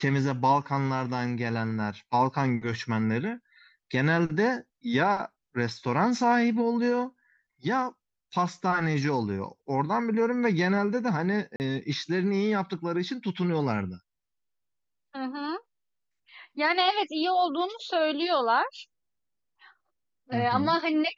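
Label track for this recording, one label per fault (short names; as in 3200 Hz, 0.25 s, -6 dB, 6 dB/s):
11.560000	11.600000	gap 39 ms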